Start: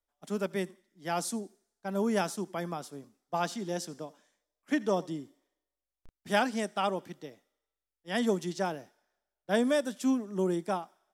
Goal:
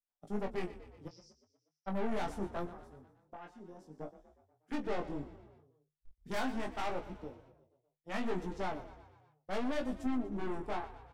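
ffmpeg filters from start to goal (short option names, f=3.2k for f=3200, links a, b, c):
-filter_complex "[0:a]afwtdn=0.0112,asettb=1/sr,asplit=3[a][b][c];[a]atrim=end=2.654[d];[b]atrim=start=2.65:end=3.98,asetpts=PTS-STARTPTS,afade=t=in:d=0.004:c=qsin,afade=t=out:st=1.326:d=0.004:c=qsin,acompressor=threshold=-51dB:ratio=3[e];[c]atrim=start=3.976[f];[d][e]acrossfade=d=0.004:c1=hsin:c2=qsin[g];[g][f]acrossfade=d=0.004:c1=qsin:c2=hsin,aeval=exprs='(tanh(56.2*val(0)+0.55)-tanh(0.55))/56.2':c=same,flanger=delay=15.5:depth=7.3:speed=0.7,asplit=3[h][i][j];[h]afade=t=out:st=1.07:d=0.02[k];[i]asuperpass=centerf=5300:order=4:qfactor=5.2,afade=t=in:st=1.07:d=0.02,afade=t=out:st=1.86:d=0.02[l];[j]afade=t=in:st=1.86:d=0.02[m];[k][l][m]amix=inputs=3:normalize=0,asplit=2[n][o];[o]adelay=20,volume=-9dB[p];[n][p]amix=inputs=2:normalize=0,asplit=6[q][r][s][t][u][v];[r]adelay=121,afreqshift=30,volume=-15dB[w];[s]adelay=242,afreqshift=60,volume=-20dB[x];[t]adelay=363,afreqshift=90,volume=-25.1dB[y];[u]adelay=484,afreqshift=120,volume=-30.1dB[z];[v]adelay=605,afreqshift=150,volume=-35.1dB[aa];[q][w][x][y][z][aa]amix=inputs=6:normalize=0,volume=4dB"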